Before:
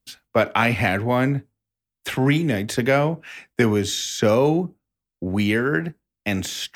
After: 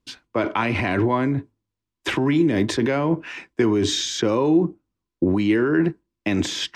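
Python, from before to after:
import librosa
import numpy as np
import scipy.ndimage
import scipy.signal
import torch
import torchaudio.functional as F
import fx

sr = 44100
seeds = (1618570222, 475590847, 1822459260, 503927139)

p1 = scipy.signal.sosfilt(scipy.signal.butter(2, 6000.0, 'lowpass', fs=sr, output='sos'), x)
p2 = fx.over_compress(p1, sr, threshold_db=-25.0, ratio=-0.5)
p3 = p1 + (p2 * librosa.db_to_amplitude(2.5))
p4 = fx.small_body(p3, sr, hz=(330.0, 1000.0), ring_ms=40, db=12)
y = p4 * librosa.db_to_amplitude(-7.5)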